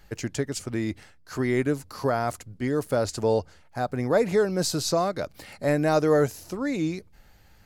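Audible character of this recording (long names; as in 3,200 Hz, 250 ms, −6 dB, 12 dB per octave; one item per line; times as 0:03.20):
background noise floor −55 dBFS
spectral slope −5.5 dB per octave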